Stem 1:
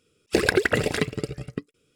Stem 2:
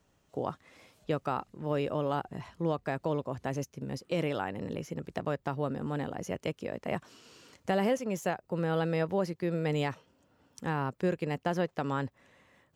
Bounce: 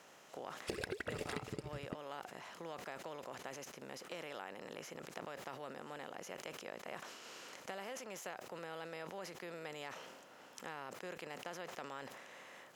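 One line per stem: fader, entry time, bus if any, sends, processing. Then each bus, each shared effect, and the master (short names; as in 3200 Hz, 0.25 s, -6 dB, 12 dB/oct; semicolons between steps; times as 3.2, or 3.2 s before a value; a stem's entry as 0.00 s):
-3.0 dB, 0.35 s, no send, compressor, threshold -21 dBFS, peak gain reduction 7.5 dB
-4.0 dB, 0.00 s, no send, per-bin compression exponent 0.6; HPF 1100 Hz 6 dB/oct; sustainer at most 62 dB/s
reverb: off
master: compressor 2:1, threshold -49 dBFS, peak gain reduction 14.5 dB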